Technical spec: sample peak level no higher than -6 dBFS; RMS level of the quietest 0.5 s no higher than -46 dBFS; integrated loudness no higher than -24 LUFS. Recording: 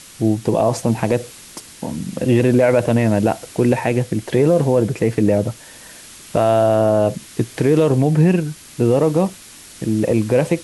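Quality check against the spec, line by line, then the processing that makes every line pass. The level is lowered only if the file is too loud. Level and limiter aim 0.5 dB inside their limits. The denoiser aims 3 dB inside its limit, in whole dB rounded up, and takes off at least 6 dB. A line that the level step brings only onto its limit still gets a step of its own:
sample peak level -5.0 dBFS: fail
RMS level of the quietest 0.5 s -40 dBFS: fail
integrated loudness -17.5 LUFS: fail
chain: gain -7 dB

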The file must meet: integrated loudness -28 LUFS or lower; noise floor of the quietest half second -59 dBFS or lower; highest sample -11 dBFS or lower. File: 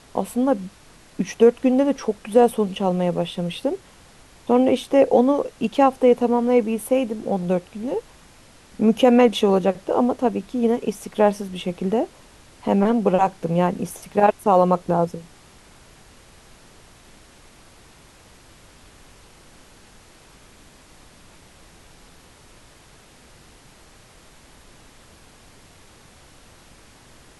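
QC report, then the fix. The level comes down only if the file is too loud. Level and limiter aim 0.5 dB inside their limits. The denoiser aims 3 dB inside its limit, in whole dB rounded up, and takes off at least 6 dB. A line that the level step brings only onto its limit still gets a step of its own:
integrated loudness -20.5 LUFS: fail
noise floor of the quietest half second -50 dBFS: fail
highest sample -4.0 dBFS: fail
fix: denoiser 6 dB, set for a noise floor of -50 dBFS; gain -8 dB

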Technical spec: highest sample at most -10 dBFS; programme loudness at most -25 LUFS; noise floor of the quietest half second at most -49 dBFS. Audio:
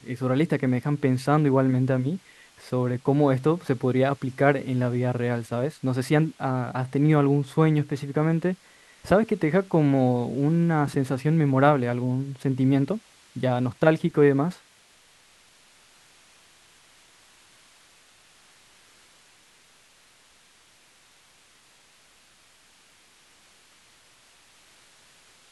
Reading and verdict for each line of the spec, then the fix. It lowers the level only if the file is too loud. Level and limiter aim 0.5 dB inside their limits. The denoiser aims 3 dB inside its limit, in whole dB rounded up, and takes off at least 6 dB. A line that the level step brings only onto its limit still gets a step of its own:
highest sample -3.5 dBFS: fail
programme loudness -23.5 LUFS: fail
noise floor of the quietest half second -58 dBFS: OK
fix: gain -2 dB; limiter -10.5 dBFS

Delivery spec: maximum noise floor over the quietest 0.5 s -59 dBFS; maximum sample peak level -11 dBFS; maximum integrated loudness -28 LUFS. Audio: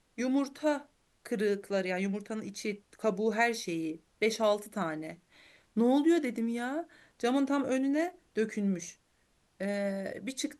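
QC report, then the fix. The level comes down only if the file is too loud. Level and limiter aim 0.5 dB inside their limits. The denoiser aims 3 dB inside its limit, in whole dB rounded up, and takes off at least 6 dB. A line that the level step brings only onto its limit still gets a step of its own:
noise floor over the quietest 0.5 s -71 dBFS: OK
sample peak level -14.5 dBFS: OK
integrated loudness -32.0 LUFS: OK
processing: none

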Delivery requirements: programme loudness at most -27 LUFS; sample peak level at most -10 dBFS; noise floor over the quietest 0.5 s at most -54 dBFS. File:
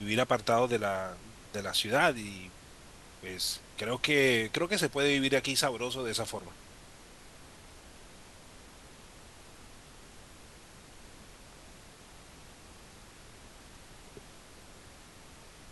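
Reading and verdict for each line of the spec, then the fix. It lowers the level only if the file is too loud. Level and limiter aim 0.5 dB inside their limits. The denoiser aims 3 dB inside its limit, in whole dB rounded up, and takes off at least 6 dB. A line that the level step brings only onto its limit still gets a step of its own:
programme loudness -29.5 LUFS: OK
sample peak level -11.5 dBFS: OK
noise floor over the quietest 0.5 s -53 dBFS: fail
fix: denoiser 6 dB, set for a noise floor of -53 dBFS

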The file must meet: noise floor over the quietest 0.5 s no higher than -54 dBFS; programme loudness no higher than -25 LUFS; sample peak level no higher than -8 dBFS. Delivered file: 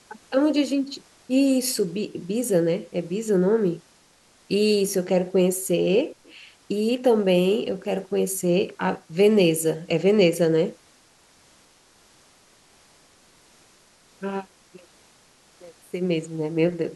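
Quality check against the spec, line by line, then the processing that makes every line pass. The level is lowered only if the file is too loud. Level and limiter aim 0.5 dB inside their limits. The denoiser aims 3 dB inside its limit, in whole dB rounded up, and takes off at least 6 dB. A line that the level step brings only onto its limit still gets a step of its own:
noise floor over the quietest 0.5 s -57 dBFS: OK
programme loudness -23.0 LUFS: fail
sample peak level -6.0 dBFS: fail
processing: gain -2.5 dB

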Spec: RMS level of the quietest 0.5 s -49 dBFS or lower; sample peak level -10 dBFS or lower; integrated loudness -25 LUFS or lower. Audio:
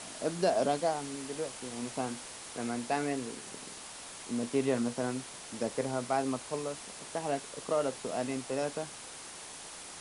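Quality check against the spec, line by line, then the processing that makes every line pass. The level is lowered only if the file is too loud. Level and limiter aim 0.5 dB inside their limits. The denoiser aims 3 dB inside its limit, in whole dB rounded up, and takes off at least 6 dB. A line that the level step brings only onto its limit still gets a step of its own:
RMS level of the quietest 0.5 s -46 dBFS: fail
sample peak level -16.0 dBFS: OK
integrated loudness -35.0 LUFS: OK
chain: denoiser 6 dB, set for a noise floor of -46 dBFS

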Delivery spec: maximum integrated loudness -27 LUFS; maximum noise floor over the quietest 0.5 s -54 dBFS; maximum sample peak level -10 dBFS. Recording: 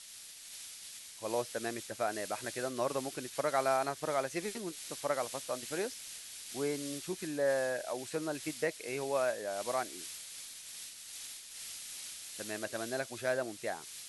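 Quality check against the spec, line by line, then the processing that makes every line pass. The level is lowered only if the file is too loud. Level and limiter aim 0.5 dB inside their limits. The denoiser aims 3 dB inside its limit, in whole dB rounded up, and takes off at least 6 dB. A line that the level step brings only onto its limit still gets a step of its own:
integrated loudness -37.0 LUFS: OK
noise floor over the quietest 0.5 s -51 dBFS: fail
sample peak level -16.5 dBFS: OK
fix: denoiser 6 dB, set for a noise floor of -51 dBFS

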